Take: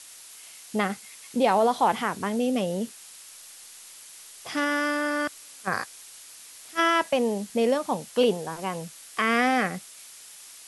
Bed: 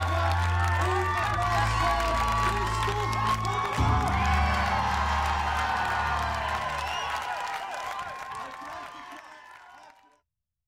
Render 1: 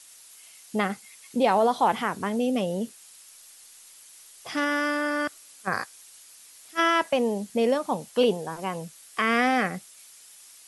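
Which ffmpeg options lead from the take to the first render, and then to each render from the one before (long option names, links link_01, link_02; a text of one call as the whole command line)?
ffmpeg -i in.wav -af "afftdn=noise_reduction=6:noise_floor=-47" out.wav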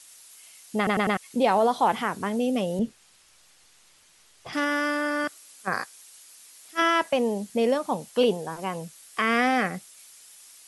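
ffmpeg -i in.wav -filter_complex "[0:a]asettb=1/sr,asplit=3[link_01][link_02][link_03];[link_01]atrim=end=2.794[link_04];[link_02]atrim=start=2.79:end=4.53,asetpts=PTS-STARTPTS,afade=type=in:duration=0.004:curve=qsin,afade=type=out:start_time=1.736:duration=0.004:curve=qsin,aemphasis=mode=reproduction:type=bsi[link_05];[link_03]atrim=start=4.526[link_06];[link_04][link_05]acrossfade=duration=0.004:curve1=hsin:curve2=qsin[link_07];[link_07][link_06]acrossfade=duration=0.004:curve1=qsin:curve2=hsin,asettb=1/sr,asplit=3[link_08][link_09][link_10];[link_08]atrim=end=5.244[link_11];[link_09]atrim=start=5.24:end=6.82,asetpts=PTS-STARTPTS,afade=type=in:duration=0.004:curve=qsin,afade=type=out:start_time=1.576:duration=0.004:curve=qsin,highpass=130[link_12];[link_10]atrim=start=6.816[link_13];[link_11][link_12]acrossfade=duration=0.004:curve1=hsin:curve2=qsin[link_14];[link_14][link_13]acrossfade=duration=0.004:curve1=qsin:curve2=hsin,asplit=5[link_15][link_16][link_17][link_18][link_19];[link_15]atrim=end=0.872[link_20];[link_16]atrim=start=0.768:end=0.872[link_21];[link_17]atrim=start=0.768:end=0.872[link_22];[link_18]atrim=start=0.768:end=0.872[link_23];[link_19]atrim=start=1.168[link_24];[link_20][link_21]acrossfade=duration=0.004:curve1=hsin:curve2=hsin[link_25];[link_25][link_22]acrossfade=duration=0.004:curve1=hsin:curve2=hsin[link_26];[link_26][link_23]acrossfade=duration=0.004:curve1=hsin:curve2=hsin[link_27];[link_27][link_24]acrossfade=duration=0.004:curve1=hsin:curve2=hsin" out.wav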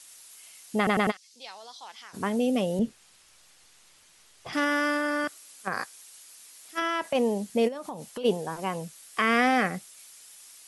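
ffmpeg -i in.wav -filter_complex "[0:a]asplit=3[link_01][link_02][link_03];[link_01]afade=type=out:start_time=1.1:duration=0.02[link_04];[link_02]bandpass=frequency=5100:width_type=q:width=2.6,afade=type=in:start_time=1.1:duration=0.02,afade=type=out:start_time=2.13:duration=0.02[link_05];[link_03]afade=type=in:start_time=2.13:duration=0.02[link_06];[link_04][link_05][link_06]amix=inputs=3:normalize=0,asplit=3[link_07][link_08][link_09];[link_07]afade=type=out:start_time=4.97:duration=0.02[link_10];[link_08]acompressor=threshold=-23dB:ratio=6:attack=3.2:release=140:knee=1:detection=peak,afade=type=in:start_time=4.97:duration=0.02,afade=type=out:start_time=7.14:duration=0.02[link_11];[link_09]afade=type=in:start_time=7.14:duration=0.02[link_12];[link_10][link_11][link_12]amix=inputs=3:normalize=0,asplit=3[link_13][link_14][link_15];[link_13]afade=type=out:start_time=7.67:duration=0.02[link_16];[link_14]acompressor=threshold=-32dB:ratio=16:attack=3.2:release=140:knee=1:detection=peak,afade=type=in:start_time=7.67:duration=0.02,afade=type=out:start_time=8.24:duration=0.02[link_17];[link_15]afade=type=in:start_time=8.24:duration=0.02[link_18];[link_16][link_17][link_18]amix=inputs=3:normalize=0" out.wav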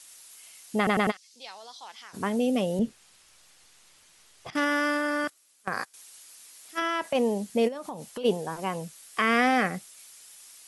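ffmpeg -i in.wav -filter_complex "[0:a]asettb=1/sr,asplit=3[link_01][link_02][link_03];[link_01]atrim=end=4.504[link_04];[link_02]atrim=start=4.5:end=5.94,asetpts=PTS-STARTPTS,afade=type=in:duration=0.004:curve=qsin,afade=type=out:start_time=1.436:duration=0.004:curve=qsin,agate=range=-13dB:threshold=-36dB:ratio=16:release=100:detection=peak[link_05];[link_03]atrim=start=5.936[link_06];[link_04][link_05]acrossfade=duration=0.004:curve1=hsin:curve2=qsin[link_07];[link_07][link_06]acrossfade=duration=0.004:curve1=qsin:curve2=hsin" out.wav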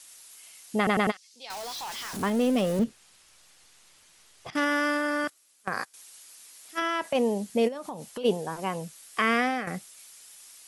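ffmpeg -i in.wav -filter_complex "[0:a]asettb=1/sr,asplit=3[link_01][link_02][link_03];[link_01]atrim=end=1.504[link_04];[link_02]atrim=start=1.5:end=2.84,asetpts=PTS-STARTPTS,afade=type=in:duration=0.004:curve=qsin,afade=type=out:start_time=1.336:duration=0.004:curve=qsin,aeval=exprs='val(0)+0.5*0.0211*sgn(val(0))':channel_layout=same[link_05];[link_03]atrim=start=2.836[link_06];[link_04][link_05]acrossfade=duration=0.004:curve1=hsin:curve2=qsin[link_07];[link_07][link_06]acrossfade=duration=0.004:curve1=qsin:curve2=hsin,asplit=2[link_08][link_09];[link_08]atrim=end=9.67,asetpts=PTS-STARTPTS,afade=type=out:start_time=9.27:duration=0.4:silence=0.251189[link_10];[link_09]atrim=start=9.67,asetpts=PTS-STARTPTS,afade=type=in:duration=0.004:curve=hsin:silence=0.251189[link_11];[link_10][link_11]concat=n=2:v=0:a=1" out.wav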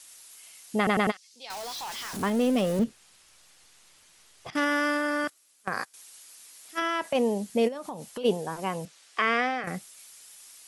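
ffmpeg -i in.wav -filter_complex "[0:a]asettb=1/sr,asplit=3[link_01][link_02][link_03];[link_01]atrim=end=8.854[link_04];[link_02]atrim=start=8.85:end=9.64,asetpts=PTS-STARTPTS,afade=type=in:duration=0.004:curve=qsin,afade=type=out:start_time=0.786:duration=0.004:curve=qsin,highpass=310,lowpass=5600[link_05];[link_03]atrim=start=9.636[link_06];[link_04][link_05]acrossfade=duration=0.004:curve1=hsin:curve2=qsin[link_07];[link_07][link_06]acrossfade=duration=0.004:curve1=qsin:curve2=hsin" out.wav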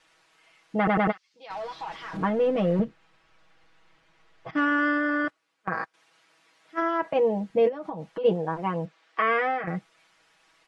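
ffmpeg -i in.wav -af "lowpass=1900,aecho=1:1:6.2:0.91" out.wav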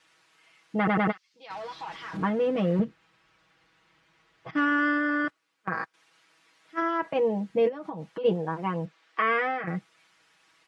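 ffmpeg -i in.wav -af "highpass=56,equalizer=frequency=650:width_type=o:width=0.9:gain=-4.5" out.wav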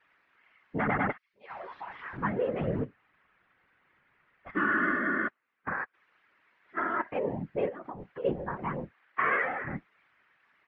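ffmpeg -i in.wav -af "lowpass=frequency=1900:width_type=q:width=1.9,afftfilt=real='hypot(re,im)*cos(2*PI*random(0))':imag='hypot(re,im)*sin(2*PI*random(1))':win_size=512:overlap=0.75" out.wav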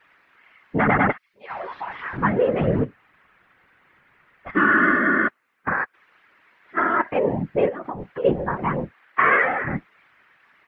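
ffmpeg -i in.wav -af "volume=10dB" out.wav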